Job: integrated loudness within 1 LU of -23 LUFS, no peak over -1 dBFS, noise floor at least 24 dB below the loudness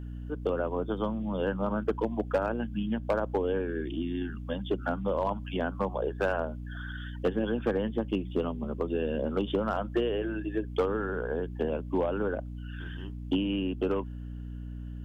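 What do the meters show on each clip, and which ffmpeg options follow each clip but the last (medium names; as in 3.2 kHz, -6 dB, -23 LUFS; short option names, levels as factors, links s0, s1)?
hum 60 Hz; highest harmonic 300 Hz; hum level -36 dBFS; loudness -31.5 LUFS; peak level -18.0 dBFS; loudness target -23.0 LUFS
-> -af "bandreject=f=60:t=h:w=6,bandreject=f=120:t=h:w=6,bandreject=f=180:t=h:w=6,bandreject=f=240:t=h:w=6,bandreject=f=300:t=h:w=6"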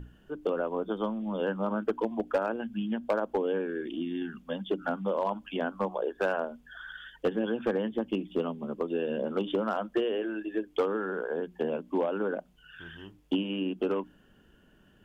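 hum not found; loudness -32.0 LUFS; peak level -18.0 dBFS; loudness target -23.0 LUFS
-> -af "volume=2.82"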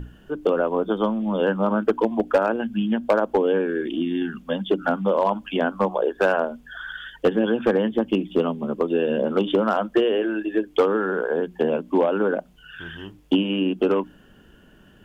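loudness -23.0 LUFS; peak level -9.0 dBFS; noise floor -52 dBFS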